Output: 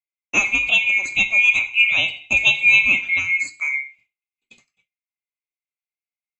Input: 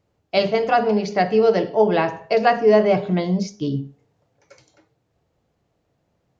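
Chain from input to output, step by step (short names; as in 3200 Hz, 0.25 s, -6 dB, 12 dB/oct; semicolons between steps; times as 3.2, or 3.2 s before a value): band-swap scrambler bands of 2000 Hz; notches 50/100/150 Hz; expander -46 dBFS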